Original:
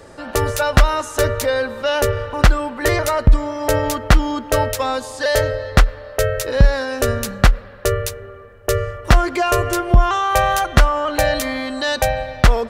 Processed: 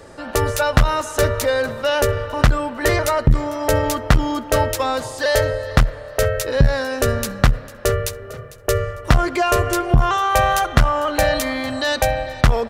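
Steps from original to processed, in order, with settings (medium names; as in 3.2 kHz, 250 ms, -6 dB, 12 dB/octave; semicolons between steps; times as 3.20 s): frequency-shifting echo 450 ms, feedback 33%, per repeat +37 Hz, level -18.5 dB; transformer saturation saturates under 94 Hz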